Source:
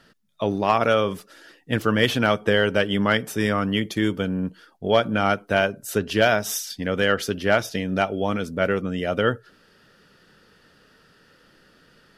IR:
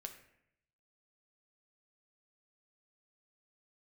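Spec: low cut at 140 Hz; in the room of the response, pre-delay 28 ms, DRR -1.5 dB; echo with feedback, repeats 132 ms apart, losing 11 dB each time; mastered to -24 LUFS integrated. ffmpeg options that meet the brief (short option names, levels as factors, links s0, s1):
-filter_complex "[0:a]highpass=140,aecho=1:1:132|264|396:0.282|0.0789|0.0221,asplit=2[s0][s1];[1:a]atrim=start_sample=2205,adelay=28[s2];[s1][s2]afir=irnorm=-1:irlink=0,volume=1.88[s3];[s0][s3]amix=inputs=2:normalize=0,volume=0.562"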